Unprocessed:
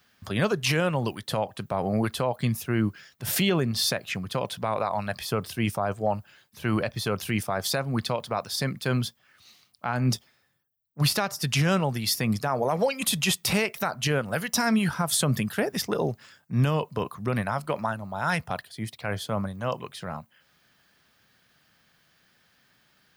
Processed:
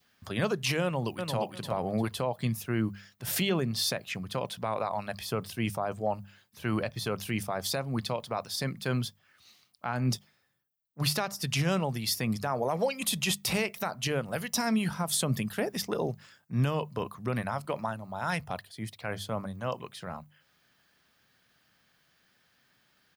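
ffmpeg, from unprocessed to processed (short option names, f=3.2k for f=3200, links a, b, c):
-filter_complex "[0:a]asplit=2[a][b];[b]afade=t=in:st=0.83:d=0.01,afade=t=out:st=1.38:d=0.01,aecho=0:1:350|700|1050:0.562341|0.112468|0.0224937[c];[a][c]amix=inputs=2:normalize=0,bandreject=f=50:t=h:w=6,bandreject=f=100:t=h:w=6,bandreject=f=150:t=h:w=6,bandreject=f=200:t=h:w=6,adynamicequalizer=threshold=0.00562:dfrequency=1500:dqfactor=2.6:tfrequency=1500:tqfactor=2.6:attack=5:release=100:ratio=0.375:range=2.5:mode=cutabove:tftype=bell,volume=-4dB"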